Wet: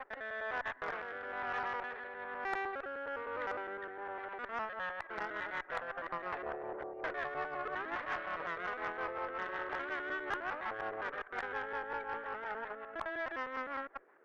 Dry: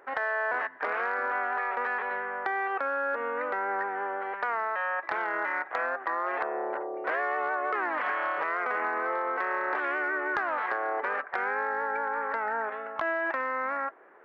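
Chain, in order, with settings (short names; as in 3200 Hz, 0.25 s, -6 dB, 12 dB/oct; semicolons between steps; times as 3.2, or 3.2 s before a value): local time reversal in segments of 0.102 s; rotary speaker horn 1.1 Hz, later 5.5 Hz, at 4.04; added harmonics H 6 -23 dB, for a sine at -16 dBFS; gain -6.5 dB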